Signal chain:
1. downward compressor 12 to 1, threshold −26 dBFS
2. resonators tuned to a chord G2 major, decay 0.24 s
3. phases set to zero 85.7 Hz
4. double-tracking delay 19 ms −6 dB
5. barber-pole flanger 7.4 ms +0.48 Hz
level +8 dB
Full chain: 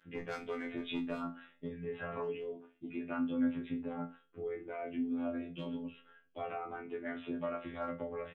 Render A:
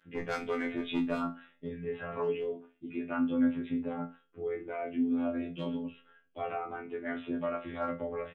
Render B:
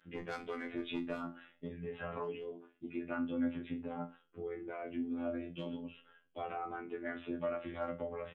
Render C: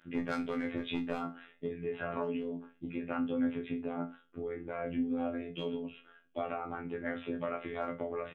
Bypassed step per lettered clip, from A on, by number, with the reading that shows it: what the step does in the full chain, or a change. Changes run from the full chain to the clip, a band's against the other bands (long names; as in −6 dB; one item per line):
1, average gain reduction 4.0 dB
4, 250 Hz band −1.5 dB
5, change in crest factor +2.0 dB